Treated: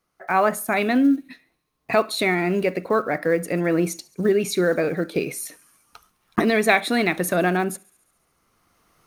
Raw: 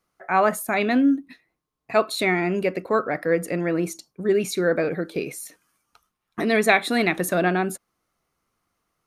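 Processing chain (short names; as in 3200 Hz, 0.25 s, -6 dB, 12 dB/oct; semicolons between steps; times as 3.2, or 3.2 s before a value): block floating point 7-bit; recorder AGC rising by 10 dB/s; notch 7400 Hz, Q 14; thin delay 70 ms, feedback 71%, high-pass 4300 Hz, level -22 dB; on a send at -20.5 dB: reverb, pre-delay 45 ms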